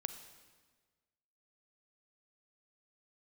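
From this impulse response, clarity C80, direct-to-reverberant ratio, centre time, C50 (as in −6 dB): 11.5 dB, 9.5 dB, 15 ms, 10.0 dB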